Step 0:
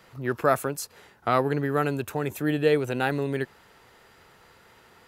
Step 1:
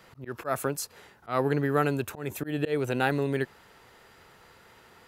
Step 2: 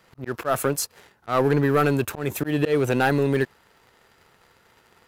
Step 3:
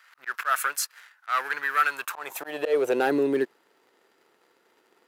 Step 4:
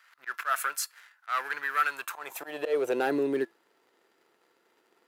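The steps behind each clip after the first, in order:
volume swells 171 ms
leveller curve on the samples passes 2
high-pass filter sweep 1,500 Hz → 320 Hz, 0:01.85–0:03.16; speech leveller within 4 dB 2 s; level −4 dB
tuned comb filter 340 Hz, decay 0.22 s, harmonics all, mix 40%

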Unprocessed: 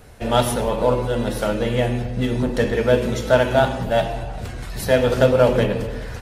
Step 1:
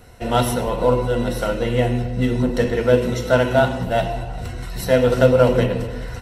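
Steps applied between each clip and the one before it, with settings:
EQ curve with evenly spaced ripples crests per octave 2, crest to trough 8 dB
level −1 dB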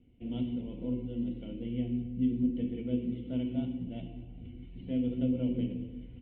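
formant resonators in series i
parametric band 1,500 Hz −5 dB 1.9 octaves
level −5 dB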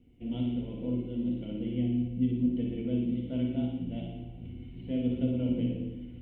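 flutter between parallel walls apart 9.8 metres, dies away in 0.73 s
level +1.5 dB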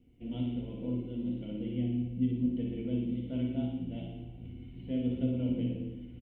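double-tracking delay 15 ms −12 dB
level −2.5 dB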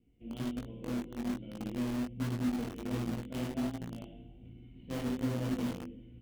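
in parallel at −5 dB: bit reduction 5 bits
on the sum: chorus effect 1.3 Hz, delay 17.5 ms, depth 4.3 ms
level −2.5 dB

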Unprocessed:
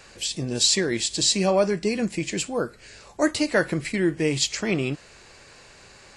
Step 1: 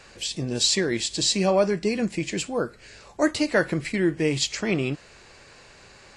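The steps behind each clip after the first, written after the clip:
high-shelf EQ 8,900 Hz −8 dB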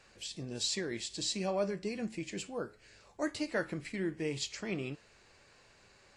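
flanger 1.4 Hz, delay 8.8 ms, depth 2 ms, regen +82%
level −8 dB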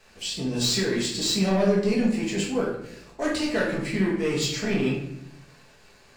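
leveller curve on the samples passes 2
rectangular room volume 190 cubic metres, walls mixed, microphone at 1.5 metres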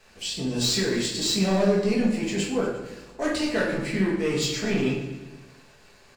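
repeating echo 118 ms, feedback 60%, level −15.5 dB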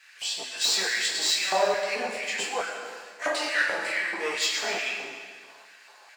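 auto-filter high-pass square 2.3 Hz 790–1,800 Hz
flanger 0.35 Hz, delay 8.7 ms, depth 4.4 ms, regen −52%
comb and all-pass reverb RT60 1.5 s, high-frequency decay 1×, pre-delay 75 ms, DRR 7.5 dB
level +4.5 dB

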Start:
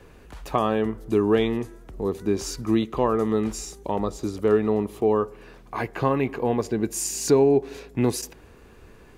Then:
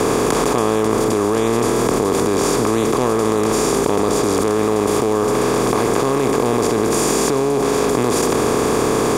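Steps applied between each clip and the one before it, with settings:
compressor on every frequency bin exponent 0.2
envelope flattener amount 100%
level −6 dB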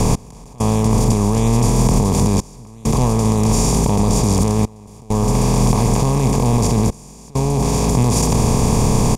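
drawn EQ curve 200 Hz 0 dB, 330 Hz −15 dB, 950 Hz +1 dB, 1,400 Hz −14 dB, 2,400 Hz +3 dB, 3,500 Hz +3 dB, 5,700 Hz +14 dB
gate pattern "x...xxxxxxxxxxx" 100 BPM −24 dB
spectral tilt −4 dB per octave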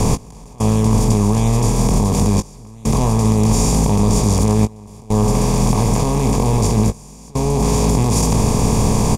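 speech leveller
double-tracking delay 19 ms −8 dB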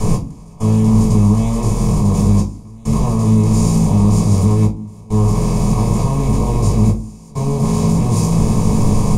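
convolution reverb RT60 0.35 s, pre-delay 3 ms, DRR −5.5 dB
level −12.5 dB

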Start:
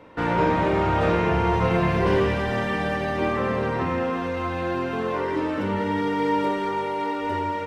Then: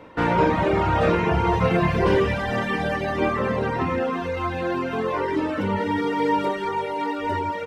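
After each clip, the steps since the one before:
reverb reduction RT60 0.93 s
level +3.5 dB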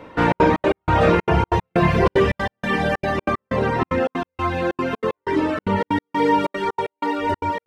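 gate pattern "xxxx.xx.x.." 188 BPM −60 dB
level +4 dB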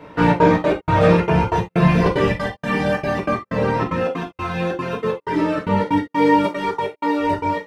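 reverb whose tail is shaped and stops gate 100 ms falling, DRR −1.5 dB
level −2.5 dB

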